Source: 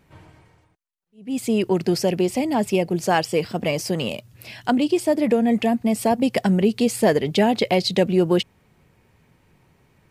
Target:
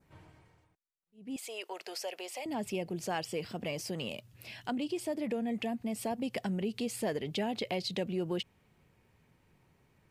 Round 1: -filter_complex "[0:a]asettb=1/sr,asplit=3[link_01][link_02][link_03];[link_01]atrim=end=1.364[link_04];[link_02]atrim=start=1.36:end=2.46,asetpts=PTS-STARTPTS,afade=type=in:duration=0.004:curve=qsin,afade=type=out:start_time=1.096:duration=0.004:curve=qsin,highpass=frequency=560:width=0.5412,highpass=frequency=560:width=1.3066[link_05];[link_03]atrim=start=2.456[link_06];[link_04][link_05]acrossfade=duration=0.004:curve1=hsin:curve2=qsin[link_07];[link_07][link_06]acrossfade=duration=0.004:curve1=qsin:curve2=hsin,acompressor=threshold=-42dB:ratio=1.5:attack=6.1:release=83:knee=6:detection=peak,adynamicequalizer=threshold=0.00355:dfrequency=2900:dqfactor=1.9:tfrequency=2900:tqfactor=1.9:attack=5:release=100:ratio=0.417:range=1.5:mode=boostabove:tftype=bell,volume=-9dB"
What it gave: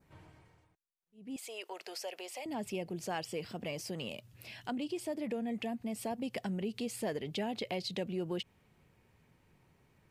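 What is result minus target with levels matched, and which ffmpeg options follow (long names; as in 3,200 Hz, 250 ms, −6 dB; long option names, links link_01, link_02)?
downward compressor: peak gain reduction +2.5 dB
-filter_complex "[0:a]asettb=1/sr,asplit=3[link_01][link_02][link_03];[link_01]atrim=end=1.364[link_04];[link_02]atrim=start=1.36:end=2.46,asetpts=PTS-STARTPTS,afade=type=in:duration=0.004:curve=qsin,afade=type=out:start_time=1.096:duration=0.004:curve=qsin,highpass=frequency=560:width=0.5412,highpass=frequency=560:width=1.3066[link_05];[link_03]atrim=start=2.456[link_06];[link_04][link_05]acrossfade=duration=0.004:curve1=hsin:curve2=qsin[link_07];[link_07][link_06]acrossfade=duration=0.004:curve1=qsin:curve2=hsin,acompressor=threshold=-34dB:ratio=1.5:attack=6.1:release=83:knee=6:detection=peak,adynamicequalizer=threshold=0.00355:dfrequency=2900:dqfactor=1.9:tfrequency=2900:tqfactor=1.9:attack=5:release=100:ratio=0.417:range=1.5:mode=boostabove:tftype=bell,volume=-9dB"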